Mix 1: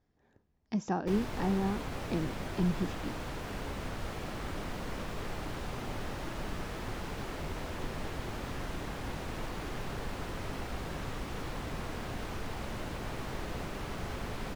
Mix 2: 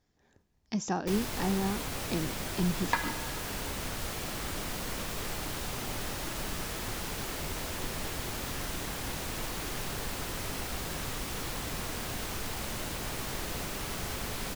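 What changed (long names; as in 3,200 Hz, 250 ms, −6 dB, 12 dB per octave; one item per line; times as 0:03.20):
second sound: unmuted
master: remove low-pass filter 1,600 Hz 6 dB per octave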